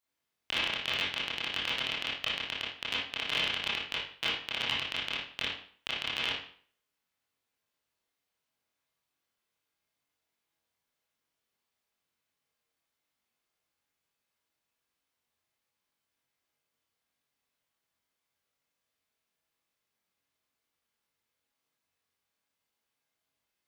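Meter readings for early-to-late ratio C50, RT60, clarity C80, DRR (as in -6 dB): 1.5 dB, 0.50 s, 7.5 dB, -6.5 dB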